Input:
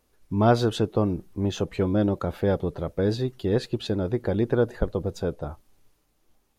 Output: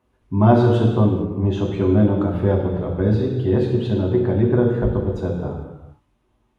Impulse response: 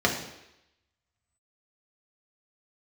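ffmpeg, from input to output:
-filter_complex "[1:a]atrim=start_sample=2205,afade=t=out:st=0.29:d=0.01,atrim=end_sample=13230,asetrate=22932,aresample=44100[s0];[0:a][s0]afir=irnorm=-1:irlink=0,volume=0.168"

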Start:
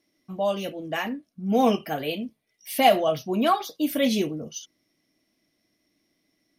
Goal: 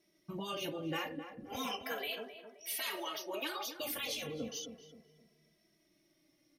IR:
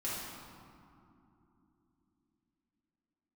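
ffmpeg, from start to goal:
-filter_complex "[0:a]asettb=1/sr,asplit=3[s0][s1][s2];[s0]atrim=end=1.554[s3];[s1]atrim=start=1.55:end=3.75,asetpts=PTS-STARTPTS,afade=t=in:d=0.004:c=qsin,afade=t=out:st=2.196:d=0.004:c=qsin,highpass=f=450:w=0.5412,highpass=f=450:w=1.3066[s4];[s2]atrim=start=3.746[s5];[s3][s4]acrossfade=d=0.004:c1=hsin:c2=qsin[s6];[s6][s5]acrossfade=d=0.004:c1=qsin:c2=hsin,afftfilt=real='re*lt(hypot(re,im),0.178)':imag='im*lt(hypot(re,im),0.178)':win_size=1024:overlap=0.75,acompressor=threshold=0.0158:ratio=3,asplit=2[s7][s8];[s8]adelay=262,lowpass=f=1400:p=1,volume=0.376,asplit=2[s9][s10];[s10]adelay=262,lowpass=f=1400:p=1,volume=0.39,asplit=2[s11][s12];[s12]adelay=262,lowpass=f=1400:p=1,volume=0.39,asplit=2[s13][s14];[s14]adelay=262,lowpass=f=1400:p=1,volume=0.39[s15];[s7][s9][s11][s13][s15]amix=inputs=5:normalize=0,asplit=2[s16][s17];[s17]adelay=2.7,afreqshift=-0.35[s18];[s16][s18]amix=inputs=2:normalize=1,volume=1.26"

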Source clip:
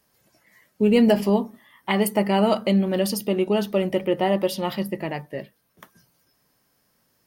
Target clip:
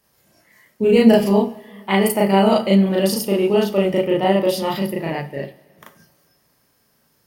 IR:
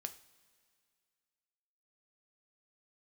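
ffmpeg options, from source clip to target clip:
-filter_complex "[0:a]asplit=2[s0][s1];[1:a]atrim=start_sample=2205,adelay=36[s2];[s1][s2]afir=irnorm=-1:irlink=0,volume=1.88[s3];[s0][s3]amix=inputs=2:normalize=0"

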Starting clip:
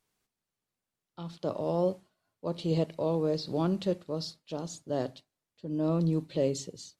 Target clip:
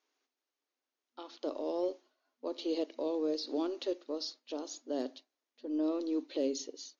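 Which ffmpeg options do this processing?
-filter_complex "[0:a]afftfilt=real='re*between(b*sr/4096,240,6900)':imag='im*between(b*sr/4096,240,6900)':win_size=4096:overlap=0.75,aeval=exprs='0.133*(cos(1*acos(clip(val(0)/0.133,-1,1)))-cos(1*PI/2))+0.00188*(cos(6*acos(clip(val(0)/0.133,-1,1)))-cos(6*PI/2))+0.00168*(cos(8*acos(clip(val(0)/0.133,-1,1)))-cos(8*PI/2))':c=same,acrossover=split=400|3000[s0][s1][s2];[s1]acompressor=threshold=0.00794:ratio=2.5[s3];[s0][s3][s2]amix=inputs=3:normalize=0"

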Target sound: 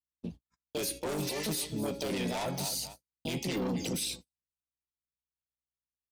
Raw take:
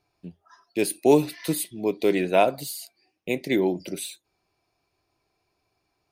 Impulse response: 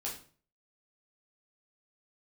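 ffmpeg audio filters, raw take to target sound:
-filter_complex "[0:a]asubboost=boost=8.5:cutoff=140,asplit=2[s0][s1];[s1]asetrate=58866,aresample=44100,atempo=0.749154,volume=0.708[s2];[s0][s2]amix=inputs=2:normalize=0,bandreject=f=277.5:t=h:w=4,bandreject=f=555:t=h:w=4,bandreject=f=832.5:t=h:w=4,bandreject=f=1110:t=h:w=4,bandreject=f=1387.5:t=h:w=4,bandreject=f=1665:t=h:w=4,bandreject=f=1942.5:t=h:w=4,bandreject=f=2220:t=h:w=4,bandreject=f=2497.5:t=h:w=4,bandreject=f=2775:t=h:w=4,bandreject=f=3052.5:t=h:w=4,bandreject=f=3330:t=h:w=4,bandreject=f=3607.5:t=h:w=4,bandreject=f=3885:t=h:w=4,bandreject=f=4162.5:t=h:w=4,bandreject=f=4440:t=h:w=4,bandreject=f=4717.5:t=h:w=4,bandreject=f=4995:t=h:w=4,bandreject=f=5272.5:t=h:w=4,bandreject=f=5550:t=h:w=4,bandreject=f=5827.5:t=h:w=4,bandreject=f=6105:t=h:w=4,bandreject=f=6382.5:t=h:w=4,bandreject=f=6660:t=h:w=4,bandreject=f=6937.5:t=h:w=4,bandreject=f=7215:t=h:w=4,bandreject=f=7492.5:t=h:w=4,bandreject=f=7770:t=h:w=4,bandreject=f=8047.5:t=h:w=4,aeval=exprs='val(0)+0.00224*(sin(2*PI*60*n/s)+sin(2*PI*2*60*n/s)/2+sin(2*PI*3*60*n/s)/3+sin(2*PI*4*60*n/s)/4+sin(2*PI*5*60*n/s)/5)':c=same,aecho=1:1:252|504:0.0891|0.0294,asoftclip=type=tanh:threshold=0.0841,acrossover=split=170|5800[s3][s4][s5];[s3]acompressor=threshold=0.00794:ratio=4[s6];[s4]acompressor=threshold=0.0398:ratio=4[s7];[s5]acompressor=threshold=0.00708:ratio=4[s8];[s6][s7][s8]amix=inputs=3:normalize=0,agate=range=0.00224:threshold=0.00708:ratio=16:detection=peak,equalizer=f=7400:w=0.56:g=8,alimiter=level_in=1.06:limit=0.0631:level=0:latency=1:release=14,volume=0.944"

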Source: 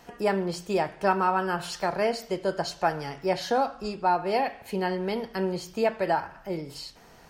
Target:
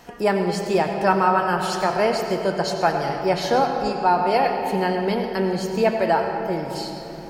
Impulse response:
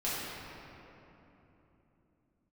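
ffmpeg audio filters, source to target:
-filter_complex "[0:a]asplit=2[s0][s1];[1:a]atrim=start_sample=2205,adelay=89[s2];[s1][s2]afir=irnorm=-1:irlink=0,volume=0.251[s3];[s0][s3]amix=inputs=2:normalize=0,volume=1.78"

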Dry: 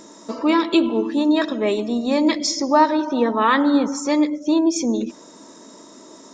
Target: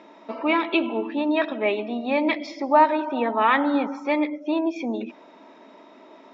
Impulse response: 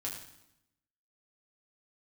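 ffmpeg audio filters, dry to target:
-af "highpass=320,equalizer=f=330:t=q:w=4:g=-4,equalizer=f=480:t=q:w=4:g=-6,equalizer=f=760:t=q:w=4:g=5,equalizer=f=1100:t=q:w=4:g=-5,equalizer=f=1700:t=q:w=4:g=-3,equalizer=f=2400:t=q:w=4:g=7,lowpass=f=3000:w=0.5412,lowpass=f=3000:w=1.3066"

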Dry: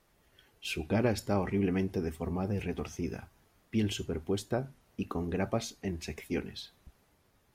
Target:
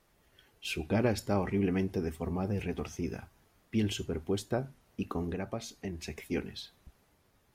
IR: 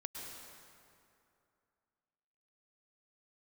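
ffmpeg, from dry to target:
-filter_complex "[0:a]asettb=1/sr,asplit=3[s0][s1][s2];[s0]atrim=end=5.314[s3];[s1]atrim=start=5.31:end=6.2,asetpts=PTS-STARTPTS,afade=t=in:d=0.004:c=qsin,afade=t=out:st=0.886:d=0.004:c=qsin,acompressor=threshold=0.0178:ratio=2.5[s4];[s2]atrim=start=6.196[s5];[s3][s4]acrossfade=d=0.004:c1=hsin:c2=qsin[s6];[s6][s5]acrossfade=d=0.004:c1=qsin:c2=hsin"

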